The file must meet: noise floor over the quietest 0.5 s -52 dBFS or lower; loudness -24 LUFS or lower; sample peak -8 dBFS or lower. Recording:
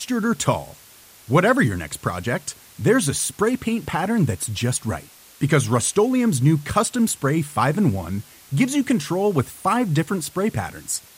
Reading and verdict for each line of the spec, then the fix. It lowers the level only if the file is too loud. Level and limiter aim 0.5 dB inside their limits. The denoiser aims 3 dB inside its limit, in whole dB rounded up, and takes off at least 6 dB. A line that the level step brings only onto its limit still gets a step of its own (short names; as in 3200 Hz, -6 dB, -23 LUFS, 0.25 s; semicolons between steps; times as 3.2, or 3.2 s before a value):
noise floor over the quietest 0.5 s -48 dBFS: fail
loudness -21.5 LUFS: fail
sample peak -5.0 dBFS: fail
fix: denoiser 6 dB, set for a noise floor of -48 dBFS; gain -3 dB; limiter -8.5 dBFS